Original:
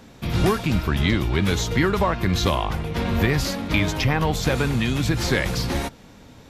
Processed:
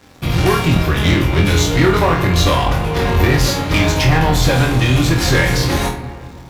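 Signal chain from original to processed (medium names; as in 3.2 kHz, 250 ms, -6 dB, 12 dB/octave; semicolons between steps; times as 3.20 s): bit crusher 11-bit; comb of notches 220 Hz; waveshaping leveller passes 3; flutter echo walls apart 4.1 m, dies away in 0.33 s; on a send at -8.5 dB: reverberation RT60 2.2 s, pre-delay 9 ms; on the sum: trim -2 dB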